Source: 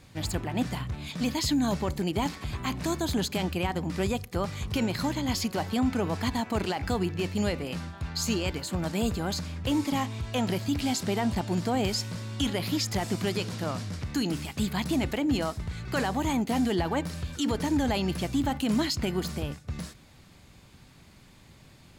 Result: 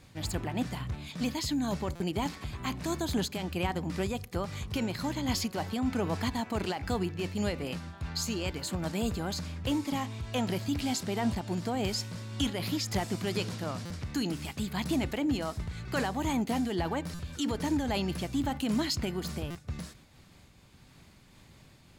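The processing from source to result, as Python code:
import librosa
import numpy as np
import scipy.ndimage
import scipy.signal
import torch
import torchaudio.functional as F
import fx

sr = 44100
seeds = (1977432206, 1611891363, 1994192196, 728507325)

y = fx.buffer_glitch(x, sr, at_s=(1.95, 13.85, 17.14, 19.5), block=256, repeats=8)
y = fx.am_noise(y, sr, seeds[0], hz=5.7, depth_pct=55)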